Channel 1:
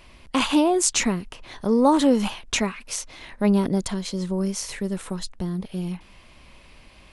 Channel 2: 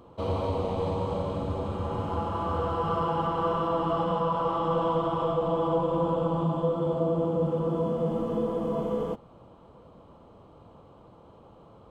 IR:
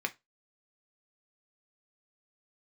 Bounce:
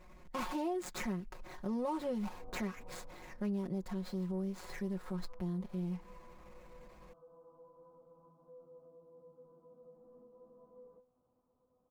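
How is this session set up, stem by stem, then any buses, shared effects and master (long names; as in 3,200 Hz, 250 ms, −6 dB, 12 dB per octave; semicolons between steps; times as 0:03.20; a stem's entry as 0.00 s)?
−8.0 dB, 0.00 s, send −22.5 dB, running median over 15 samples; transient designer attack −7 dB, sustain +1 dB; comb filter 5.5 ms, depth 79%
0:02.87 −2.5 dB → 0:03.36 −13.5 dB, 1.85 s, no send, low-pass filter 1,400 Hz 24 dB per octave; downward compressor 16 to 1, threshold −34 dBFS, peak gain reduction 13.5 dB; tuned comb filter 250 Hz, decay 0.3 s, harmonics all, mix 90%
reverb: on, RT60 0.20 s, pre-delay 3 ms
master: downward compressor 5 to 1, threshold −35 dBFS, peak gain reduction 13.5 dB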